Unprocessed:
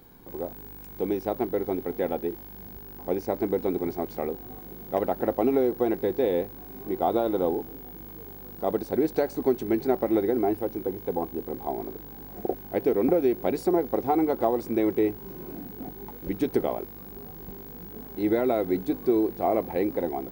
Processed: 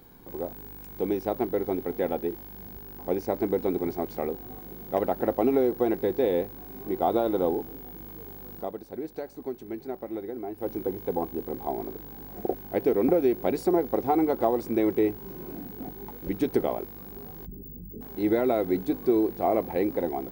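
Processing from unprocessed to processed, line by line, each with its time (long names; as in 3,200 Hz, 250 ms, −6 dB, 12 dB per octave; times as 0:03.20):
0:08.57–0:10.69: duck −11 dB, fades 0.13 s
0:17.46–0:18.01: spectral envelope exaggerated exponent 3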